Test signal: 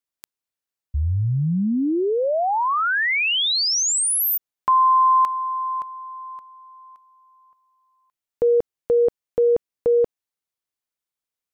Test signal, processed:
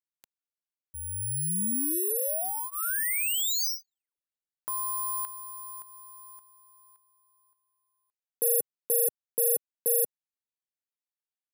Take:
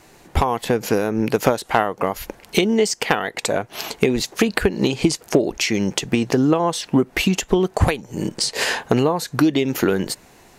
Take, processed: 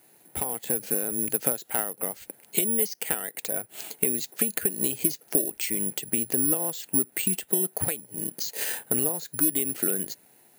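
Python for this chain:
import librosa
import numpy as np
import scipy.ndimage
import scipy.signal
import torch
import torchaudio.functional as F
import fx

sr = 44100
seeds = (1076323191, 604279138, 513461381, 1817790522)

y = scipy.signal.sosfilt(scipy.signal.butter(2, 130.0, 'highpass', fs=sr, output='sos'), x)
y = fx.notch(y, sr, hz=1100.0, q=5.1)
y = fx.dynamic_eq(y, sr, hz=880.0, q=1.5, threshold_db=-37.0, ratio=6.0, max_db=-4)
y = (np.kron(scipy.signal.resample_poly(y, 1, 4), np.eye(4)[0]) * 4)[:len(y)]
y = y * librosa.db_to_amplitude(-13.0)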